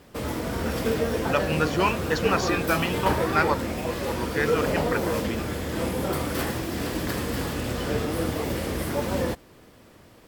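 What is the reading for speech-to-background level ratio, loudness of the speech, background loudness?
0.0 dB, −27.5 LKFS, −27.5 LKFS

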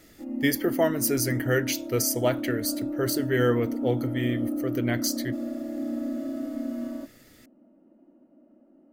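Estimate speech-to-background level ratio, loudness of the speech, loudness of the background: 5.0 dB, −27.0 LKFS, −32.0 LKFS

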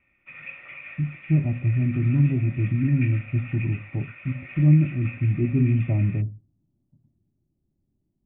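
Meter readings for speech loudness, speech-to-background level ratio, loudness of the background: −23.5 LKFS, 17.5 dB, −41.0 LKFS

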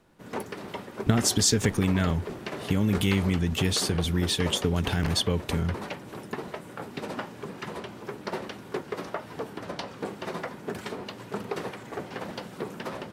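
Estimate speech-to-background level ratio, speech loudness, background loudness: 11.0 dB, −26.0 LKFS, −37.0 LKFS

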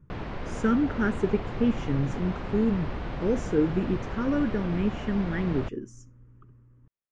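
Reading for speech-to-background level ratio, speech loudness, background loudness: 8.0 dB, −28.0 LKFS, −36.0 LKFS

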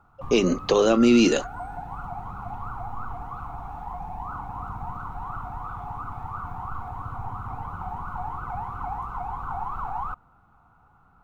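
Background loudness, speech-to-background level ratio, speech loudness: −35.0 LKFS, 14.5 dB, −20.5 LKFS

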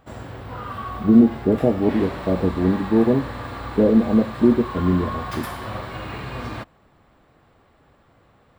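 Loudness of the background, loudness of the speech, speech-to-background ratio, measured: −32.5 LKFS, −19.5 LKFS, 13.0 dB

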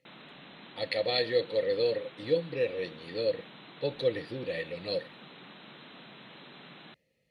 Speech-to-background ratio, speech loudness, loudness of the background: 17.5 dB, −32.0 LKFS, −49.5 LKFS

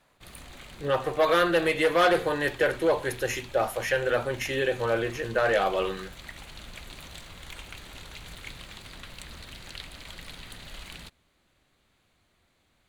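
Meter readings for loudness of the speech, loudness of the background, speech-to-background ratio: −25.5 LKFS, −44.0 LKFS, 18.5 dB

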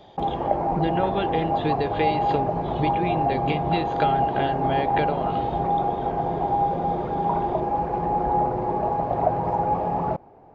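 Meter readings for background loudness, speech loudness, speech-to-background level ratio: −24.5 LKFS, −28.5 LKFS, −4.0 dB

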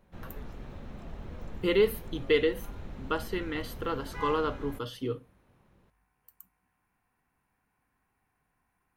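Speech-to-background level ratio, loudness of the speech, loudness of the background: 13.5 dB, −31.0 LKFS, −44.5 LKFS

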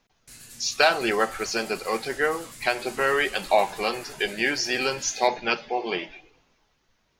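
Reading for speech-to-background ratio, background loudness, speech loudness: 18.5 dB, −43.5 LKFS, −25.0 LKFS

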